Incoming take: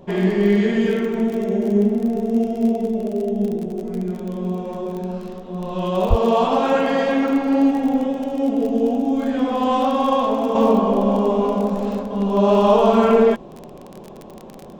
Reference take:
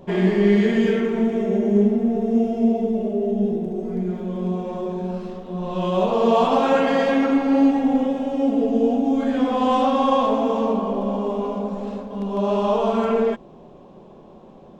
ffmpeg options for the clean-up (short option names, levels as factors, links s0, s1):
-filter_complex "[0:a]adeclick=t=4,asplit=3[s0][s1][s2];[s0]afade=t=out:st=6.09:d=0.02[s3];[s1]highpass=f=140:w=0.5412,highpass=f=140:w=1.3066,afade=t=in:st=6.09:d=0.02,afade=t=out:st=6.21:d=0.02[s4];[s2]afade=t=in:st=6.21:d=0.02[s5];[s3][s4][s5]amix=inputs=3:normalize=0,asetnsamples=n=441:p=0,asendcmd='10.55 volume volume -6dB',volume=1"